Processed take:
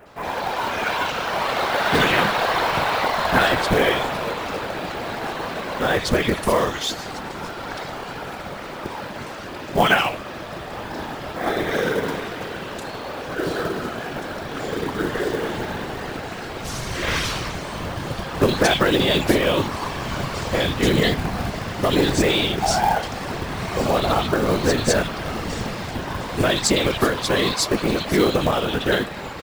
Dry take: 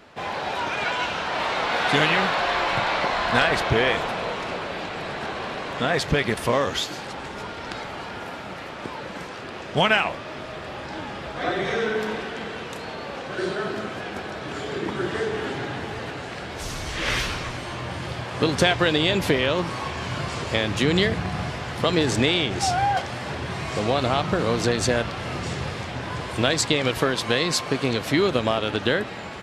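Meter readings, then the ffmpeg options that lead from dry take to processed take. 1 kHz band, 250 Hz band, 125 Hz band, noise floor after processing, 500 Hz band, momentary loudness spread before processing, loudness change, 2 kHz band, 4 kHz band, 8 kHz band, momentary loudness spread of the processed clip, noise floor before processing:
+3.0 dB, +3.0 dB, +1.5 dB, -33 dBFS, +3.0 dB, 13 LU, +2.5 dB, +1.5 dB, +1.5 dB, +3.5 dB, 13 LU, -35 dBFS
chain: -filter_complex "[0:a]afftfilt=real='hypot(re,im)*cos(2*PI*random(0))':imag='hypot(re,im)*sin(2*PI*random(1))':win_size=512:overlap=0.75,acrossover=split=2500[a][b];[b]adelay=60[c];[a][c]amix=inputs=2:normalize=0,acrusher=bits=5:mode=log:mix=0:aa=0.000001,volume=9dB"

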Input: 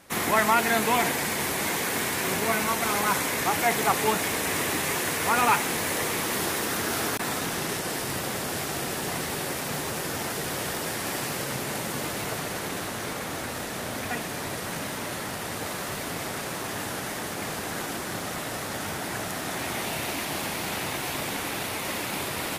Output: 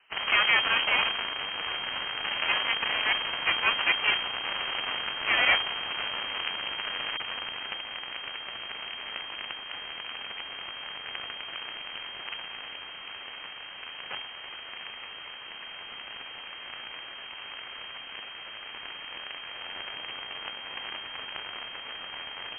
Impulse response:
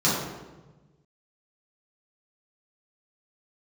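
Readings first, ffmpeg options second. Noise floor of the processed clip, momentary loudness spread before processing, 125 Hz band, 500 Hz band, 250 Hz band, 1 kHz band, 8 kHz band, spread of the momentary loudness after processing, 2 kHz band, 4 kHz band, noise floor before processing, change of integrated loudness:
-43 dBFS, 9 LU, -20.0 dB, -13.0 dB, -19.0 dB, -8.0 dB, under -40 dB, 16 LU, 0.0 dB, +4.0 dB, -34 dBFS, -3.0 dB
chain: -filter_complex "[0:a]asplit=2[a][b];[b]alimiter=limit=-16.5dB:level=0:latency=1:release=21,volume=1dB[c];[a][c]amix=inputs=2:normalize=0,aeval=exprs='0.562*(cos(1*acos(clip(val(0)/0.562,-1,1)))-cos(1*PI/2))+0.224*(cos(3*acos(clip(val(0)/0.562,-1,1)))-cos(3*PI/2))+0.141*(cos(5*acos(clip(val(0)/0.562,-1,1)))-cos(5*PI/2))+0.0398*(cos(6*acos(clip(val(0)/0.562,-1,1)))-cos(6*PI/2))+0.1*(cos(7*acos(clip(val(0)/0.562,-1,1)))-cos(7*PI/2))':c=same,lowpass=f=2.7k:t=q:w=0.5098,lowpass=f=2.7k:t=q:w=0.6013,lowpass=f=2.7k:t=q:w=0.9,lowpass=f=2.7k:t=q:w=2.563,afreqshift=-3200"

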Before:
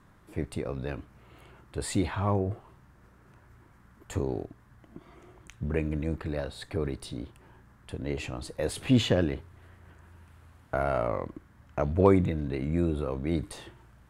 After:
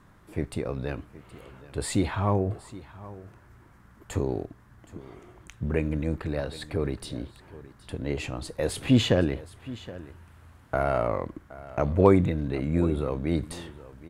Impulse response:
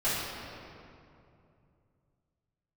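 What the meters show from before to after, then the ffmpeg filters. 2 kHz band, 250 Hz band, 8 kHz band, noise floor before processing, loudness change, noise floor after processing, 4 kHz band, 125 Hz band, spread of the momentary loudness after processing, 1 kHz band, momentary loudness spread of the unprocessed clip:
+2.5 dB, +2.5 dB, +2.5 dB, -58 dBFS, +2.5 dB, -55 dBFS, +2.5 dB, +2.5 dB, 21 LU, +2.5 dB, 17 LU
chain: -af "aecho=1:1:770:0.126,volume=2.5dB"

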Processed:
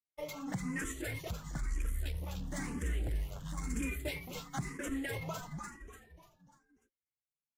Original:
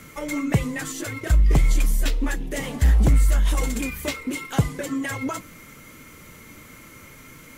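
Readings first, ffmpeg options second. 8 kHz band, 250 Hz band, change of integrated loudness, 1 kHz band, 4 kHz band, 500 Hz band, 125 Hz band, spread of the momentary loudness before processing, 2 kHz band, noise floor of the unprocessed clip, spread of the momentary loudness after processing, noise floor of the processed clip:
-13.0 dB, -13.0 dB, -16.0 dB, -12.0 dB, -13.0 dB, -12.5 dB, -17.0 dB, 11 LU, -11.5 dB, -46 dBFS, 8 LU, under -85 dBFS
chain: -filter_complex "[0:a]agate=range=-57dB:threshold=-31dB:ratio=16:detection=peak,acompressor=threshold=-25dB:ratio=6,asoftclip=type=tanh:threshold=-25dB,asplit=6[a][b][c][d][e][f];[b]adelay=295,afreqshift=-110,volume=-6dB[g];[c]adelay=590,afreqshift=-220,volume=-12.9dB[h];[d]adelay=885,afreqshift=-330,volume=-19.9dB[i];[e]adelay=1180,afreqshift=-440,volume=-26.8dB[j];[f]adelay=1475,afreqshift=-550,volume=-33.7dB[k];[a][g][h][i][j][k]amix=inputs=6:normalize=0,asplit=2[l][m];[m]afreqshift=1[n];[l][n]amix=inputs=2:normalize=1,volume=-4.5dB"

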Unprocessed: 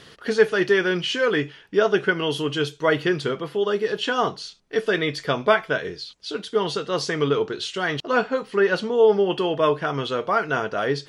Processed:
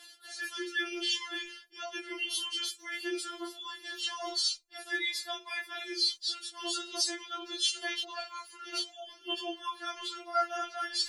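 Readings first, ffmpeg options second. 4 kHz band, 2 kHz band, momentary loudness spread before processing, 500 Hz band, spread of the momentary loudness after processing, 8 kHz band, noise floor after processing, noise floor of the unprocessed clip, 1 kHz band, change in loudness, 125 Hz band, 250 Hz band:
-2.0 dB, -12.0 dB, 7 LU, -23.0 dB, 10 LU, +3.5 dB, -57 dBFS, -50 dBFS, -12.0 dB, -11.5 dB, under -40 dB, -17.0 dB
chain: -af "agate=range=-8dB:threshold=-43dB:ratio=16:detection=peak,bandreject=f=50:t=h:w=6,bandreject=f=100:t=h:w=6,bandreject=f=150:t=h:w=6,bandreject=f=200:t=h:w=6,bandreject=f=250:t=h:w=6,bandreject=f=300:t=h:w=6,bandreject=f=350:t=h:w=6,areverse,acompressor=threshold=-35dB:ratio=5,areverse,crystalizer=i=9.5:c=0,flanger=delay=18.5:depth=4.9:speed=0.53,afftfilt=real='re*4*eq(mod(b,16),0)':imag='im*4*eq(mod(b,16),0)':win_size=2048:overlap=0.75"

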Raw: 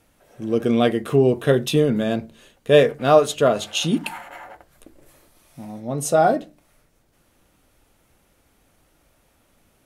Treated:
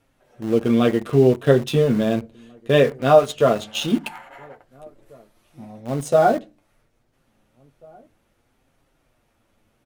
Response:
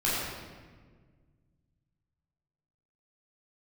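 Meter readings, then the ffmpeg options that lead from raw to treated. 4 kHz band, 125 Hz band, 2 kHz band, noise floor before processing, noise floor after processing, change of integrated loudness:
-2.5 dB, +2.0 dB, -0.5 dB, -62 dBFS, -67 dBFS, +0.5 dB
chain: -filter_complex "[0:a]highshelf=f=6.1k:g=-9,flanger=delay=7.2:depth=2.2:regen=-24:speed=0.68:shape=triangular,asplit=2[a][b];[b]aeval=exprs='val(0)*gte(abs(val(0)),0.0398)':c=same,volume=-4.5dB[c];[a][c]amix=inputs=2:normalize=0,asplit=2[d][e];[e]adelay=1691,volume=-29dB,highshelf=f=4k:g=-38[f];[d][f]amix=inputs=2:normalize=0"

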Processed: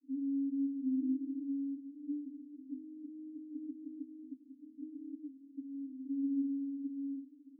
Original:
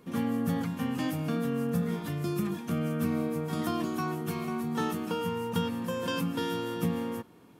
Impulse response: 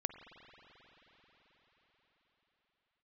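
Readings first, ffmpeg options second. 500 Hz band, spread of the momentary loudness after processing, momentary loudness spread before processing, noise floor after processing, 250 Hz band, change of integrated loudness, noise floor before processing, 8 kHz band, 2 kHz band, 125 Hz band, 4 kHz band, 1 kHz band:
under -25 dB, 14 LU, 3 LU, -60 dBFS, -5.5 dB, -8.0 dB, -55 dBFS, under -35 dB, under -40 dB, under -35 dB, under -40 dB, under -40 dB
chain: -af "acompressor=threshold=-31dB:ratio=6,asuperpass=centerf=280:order=12:qfactor=6.1,volume=6.5dB"

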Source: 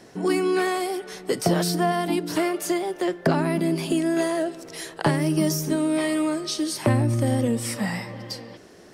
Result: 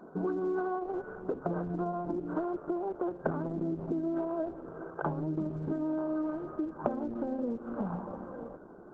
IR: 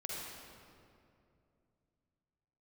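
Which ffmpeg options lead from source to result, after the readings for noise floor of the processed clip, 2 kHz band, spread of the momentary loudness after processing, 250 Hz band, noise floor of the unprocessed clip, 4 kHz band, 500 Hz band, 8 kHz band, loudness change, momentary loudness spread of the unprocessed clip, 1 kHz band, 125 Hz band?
-50 dBFS, -16.5 dB, 7 LU, -9.5 dB, -48 dBFS, under -35 dB, -9.5 dB, under -40 dB, -10.5 dB, 9 LU, -9.5 dB, -13.5 dB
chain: -af "bandreject=f=268.7:t=h:w=4,bandreject=f=537.4:t=h:w=4,bandreject=f=806.1:t=h:w=4,afftfilt=real='re*between(b*sr/4096,140,1600)':imag='im*between(b*sr/4096,140,1600)':win_size=4096:overlap=0.75,acompressor=threshold=-31dB:ratio=4" -ar 48000 -c:a libopus -b:a 10k

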